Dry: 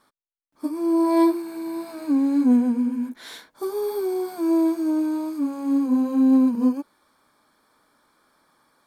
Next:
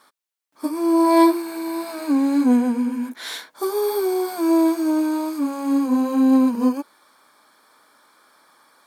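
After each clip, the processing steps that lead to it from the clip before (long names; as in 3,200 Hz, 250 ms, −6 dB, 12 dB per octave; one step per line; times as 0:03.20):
high-pass filter 600 Hz 6 dB per octave
level +9 dB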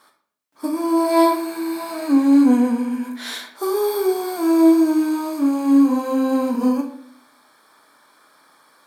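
convolution reverb RT60 0.65 s, pre-delay 22 ms, DRR 3 dB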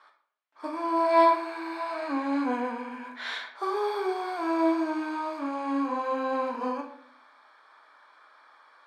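band-pass filter 690–2,700 Hz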